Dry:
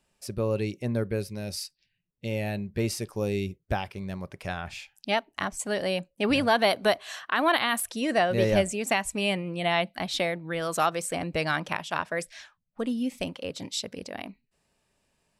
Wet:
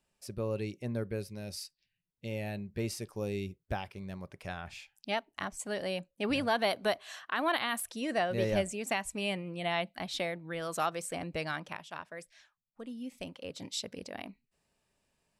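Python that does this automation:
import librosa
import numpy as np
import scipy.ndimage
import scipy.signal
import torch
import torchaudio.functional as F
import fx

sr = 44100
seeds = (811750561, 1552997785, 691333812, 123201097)

y = fx.gain(x, sr, db=fx.line((11.31, -7.0), (12.08, -14.5), (12.82, -14.5), (13.73, -5.0)))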